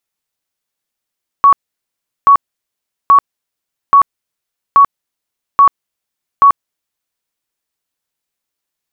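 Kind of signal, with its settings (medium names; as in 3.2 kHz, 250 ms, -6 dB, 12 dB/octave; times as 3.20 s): tone bursts 1.12 kHz, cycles 98, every 0.83 s, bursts 7, -2.5 dBFS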